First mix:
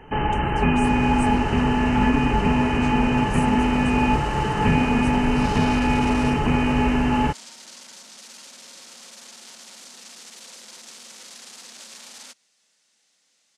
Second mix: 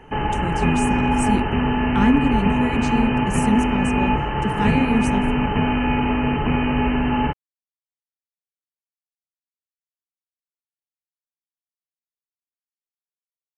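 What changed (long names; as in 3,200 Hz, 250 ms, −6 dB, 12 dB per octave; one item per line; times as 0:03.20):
speech +8.5 dB
second sound: muted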